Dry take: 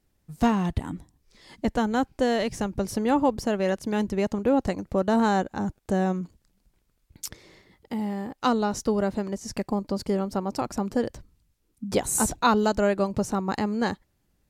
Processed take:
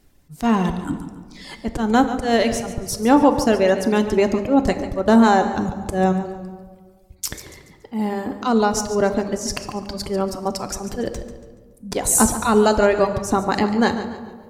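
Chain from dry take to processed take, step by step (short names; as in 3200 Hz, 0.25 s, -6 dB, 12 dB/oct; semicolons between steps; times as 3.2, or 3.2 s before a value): auto swell 0.145 s; reverb removal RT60 1.5 s; in parallel at 0 dB: compressor, threshold -36 dBFS, peak gain reduction 17.5 dB; on the sum: hard clip -11 dBFS, distortion -43 dB; on a send at -7.5 dB: reverb RT60 1.7 s, pre-delay 3 ms; on the sum: warbling echo 0.142 s, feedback 38%, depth 60 cents, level -13 dB; gain +7 dB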